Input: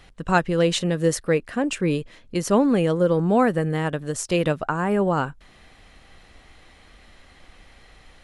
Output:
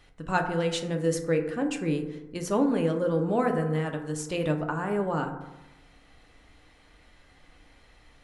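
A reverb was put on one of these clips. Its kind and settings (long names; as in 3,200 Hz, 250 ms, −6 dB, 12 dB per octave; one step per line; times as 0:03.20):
feedback delay network reverb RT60 1 s, low-frequency decay 1.1×, high-frequency decay 0.35×, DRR 3.5 dB
level −8 dB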